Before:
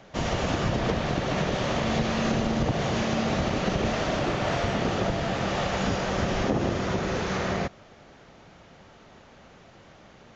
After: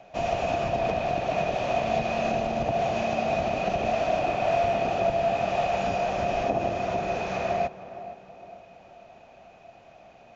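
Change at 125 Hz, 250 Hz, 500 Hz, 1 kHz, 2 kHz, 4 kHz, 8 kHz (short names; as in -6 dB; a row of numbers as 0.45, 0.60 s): -7.5 dB, -6.5 dB, +3.5 dB, +4.5 dB, -2.0 dB, -6.0 dB, n/a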